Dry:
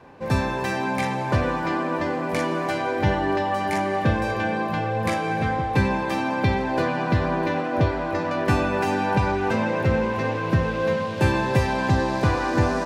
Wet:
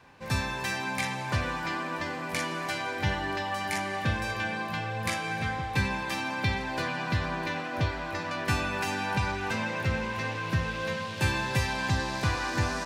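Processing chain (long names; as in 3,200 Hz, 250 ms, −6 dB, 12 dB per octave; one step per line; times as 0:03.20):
guitar amp tone stack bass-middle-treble 5-5-5
level +8 dB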